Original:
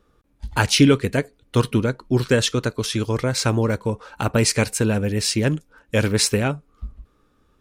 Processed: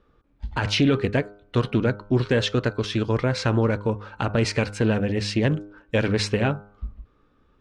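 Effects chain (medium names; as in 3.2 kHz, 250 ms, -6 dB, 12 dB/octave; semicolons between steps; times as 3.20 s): low-pass 3.5 kHz 12 dB/octave; de-hum 102.2 Hz, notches 15; peak limiter -11.5 dBFS, peak gain reduction 9.5 dB; loudspeaker Doppler distortion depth 0.14 ms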